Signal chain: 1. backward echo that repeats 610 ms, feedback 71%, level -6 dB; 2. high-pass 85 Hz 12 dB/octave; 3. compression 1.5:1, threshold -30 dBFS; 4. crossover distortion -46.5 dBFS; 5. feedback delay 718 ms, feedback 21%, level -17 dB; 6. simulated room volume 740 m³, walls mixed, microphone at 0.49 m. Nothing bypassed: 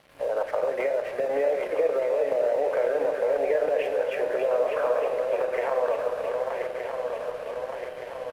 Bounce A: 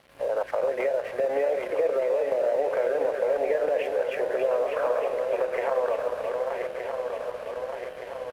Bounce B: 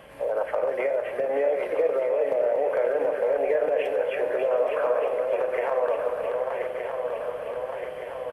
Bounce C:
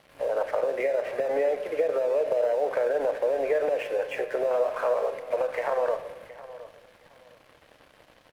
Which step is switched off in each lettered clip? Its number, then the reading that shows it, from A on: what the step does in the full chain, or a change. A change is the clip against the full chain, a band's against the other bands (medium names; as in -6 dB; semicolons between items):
6, echo-to-direct -8.5 dB to -17.0 dB; 4, distortion -24 dB; 1, momentary loudness spread change -2 LU